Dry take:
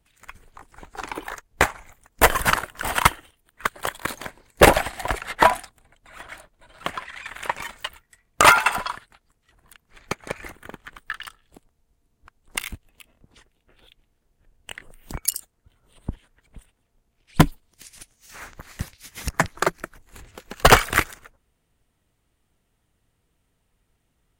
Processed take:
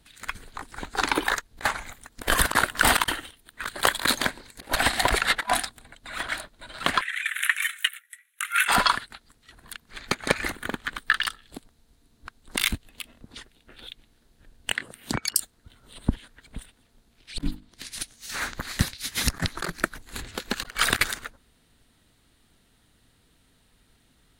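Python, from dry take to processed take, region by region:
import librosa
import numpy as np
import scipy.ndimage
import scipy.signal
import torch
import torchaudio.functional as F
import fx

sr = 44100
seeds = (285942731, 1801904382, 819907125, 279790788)

y = fx.chain(x, sr, fx.highpass(hz=1500.0, slope=24),
    fx.peak_eq(hz=11000.0, db=11.0, octaves=0.28),
    fx.fixed_phaser(hz=2000.0, stages=4), at=(7.01, 8.68))
y = fx.chain(y, sr, fx.highpass(hz=99.0, slope=12),
    fx.env_lowpass_down(base_hz=1200.0, full_db=-24.0), at=(14.72, 15.36))
y = fx.chain(y, sr, fx.high_shelf(hz=4900.0, db=-11.5),
    fx.hum_notches(base_hz=50, count=7), at=(17.44, 17.92))
y = fx.graphic_eq_15(y, sr, hz=(250, 1600, 4000, 10000), db=(6, 5, 11, 5))
y = fx.over_compress(y, sr, threshold_db=-23.0, ratio=-0.5)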